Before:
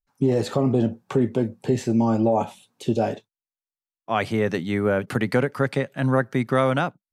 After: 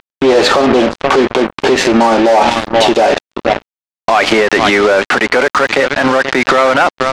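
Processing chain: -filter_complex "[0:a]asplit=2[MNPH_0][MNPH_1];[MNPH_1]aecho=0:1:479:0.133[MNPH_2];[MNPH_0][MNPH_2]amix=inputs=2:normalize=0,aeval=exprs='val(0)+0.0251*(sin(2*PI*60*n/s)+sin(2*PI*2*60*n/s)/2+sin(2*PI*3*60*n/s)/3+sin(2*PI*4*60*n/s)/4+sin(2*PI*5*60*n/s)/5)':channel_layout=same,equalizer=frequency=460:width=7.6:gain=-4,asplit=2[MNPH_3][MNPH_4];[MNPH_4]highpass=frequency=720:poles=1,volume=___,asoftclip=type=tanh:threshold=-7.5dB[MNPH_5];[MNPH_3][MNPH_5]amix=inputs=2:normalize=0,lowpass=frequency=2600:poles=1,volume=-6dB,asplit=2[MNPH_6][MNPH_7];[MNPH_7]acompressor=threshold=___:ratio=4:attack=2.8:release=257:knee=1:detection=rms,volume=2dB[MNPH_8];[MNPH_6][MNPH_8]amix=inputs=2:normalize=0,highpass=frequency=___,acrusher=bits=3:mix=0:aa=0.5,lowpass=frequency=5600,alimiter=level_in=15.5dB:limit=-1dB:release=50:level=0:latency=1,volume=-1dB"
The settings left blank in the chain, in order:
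19dB, -27dB, 350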